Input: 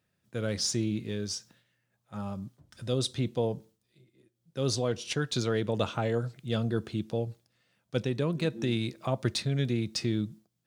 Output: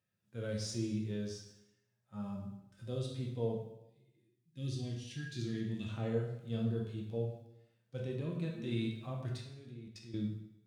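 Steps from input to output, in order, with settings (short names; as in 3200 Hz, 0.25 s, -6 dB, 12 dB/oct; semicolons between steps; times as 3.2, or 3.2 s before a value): 3.89–5.89 spectral gain 370–1600 Hz -16 dB; de-hum 126.7 Hz, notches 39; harmonic-percussive split percussive -14 dB; 9.37–10.14 level quantiser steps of 22 dB; plate-style reverb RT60 0.84 s, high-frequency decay 0.9×, DRR 1 dB; gain -7.5 dB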